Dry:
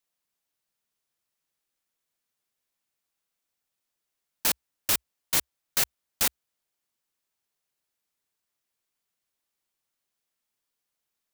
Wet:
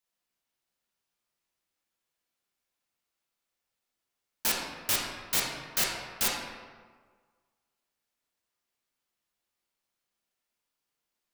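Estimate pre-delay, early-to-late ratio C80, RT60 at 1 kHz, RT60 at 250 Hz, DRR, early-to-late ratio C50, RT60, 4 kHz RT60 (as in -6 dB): 6 ms, 3.5 dB, 1.6 s, 1.5 s, -3.0 dB, 1.5 dB, 1.6 s, 0.90 s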